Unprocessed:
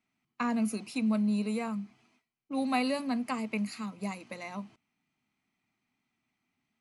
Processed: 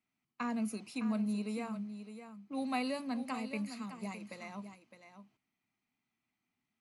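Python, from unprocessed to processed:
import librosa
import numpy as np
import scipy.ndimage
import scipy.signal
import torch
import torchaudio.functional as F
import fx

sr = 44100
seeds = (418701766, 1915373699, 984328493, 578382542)

y = x + 10.0 ** (-10.5 / 20.0) * np.pad(x, (int(610 * sr / 1000.0), 0))[:len(x)]
y = y * 10.0 ** (-6.0 / 20.0)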